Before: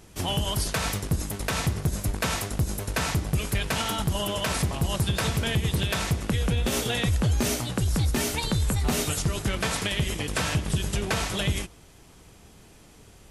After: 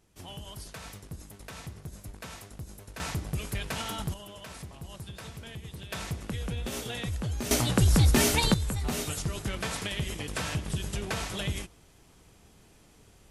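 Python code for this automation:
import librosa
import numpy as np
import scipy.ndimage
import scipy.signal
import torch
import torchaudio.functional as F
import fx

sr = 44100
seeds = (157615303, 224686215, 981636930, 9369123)

y = fx.gain(x, sr, db=fx.steps((0.0, -16.0), (3.0, -7.0), (4.14, -17.0), (5.92, -9.0), (7.51, 3.5), (8.54, -6.0)))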